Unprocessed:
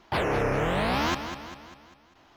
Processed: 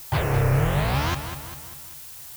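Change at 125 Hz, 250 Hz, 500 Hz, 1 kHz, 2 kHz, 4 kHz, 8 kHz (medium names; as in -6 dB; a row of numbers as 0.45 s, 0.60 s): +11.0 dB, +0.5 dB, -1.0 dB, -0.5 dB, 0.0 dB, +0.5 dB, +7.5 dB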